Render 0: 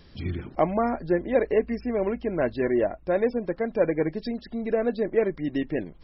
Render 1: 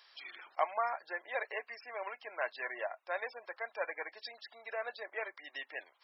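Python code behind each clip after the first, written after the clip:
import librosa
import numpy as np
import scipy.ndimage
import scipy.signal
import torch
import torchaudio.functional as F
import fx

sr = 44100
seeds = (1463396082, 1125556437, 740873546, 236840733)

y = scipy.signal.sosfilt(scipy.signal.butter(4, 830.0, 'highpass', fs=sr, output='sos'), x)
y = F.gain(torch.from_numpy(y), -2.0).numpy()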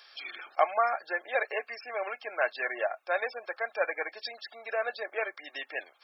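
y = fx.notch_comb(x, sr, f0_hz=970.0)
y = F.gain(torch.from_numpy(y), 8.5).numpy()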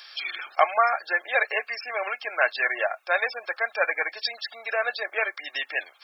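y = fx.tilt_shelf(x, sr, db=-6.0, hz=810.0)
y = F.gain(torch.from_numpy(y), 4.5).numpy()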